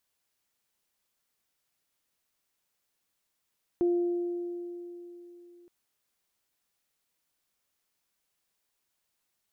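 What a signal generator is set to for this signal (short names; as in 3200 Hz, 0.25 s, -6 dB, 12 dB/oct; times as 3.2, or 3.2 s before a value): additive tone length 1.87 s, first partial 349 Hz, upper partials -20 dB, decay 3.52 s, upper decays 2.50 s, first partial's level -21.5 dB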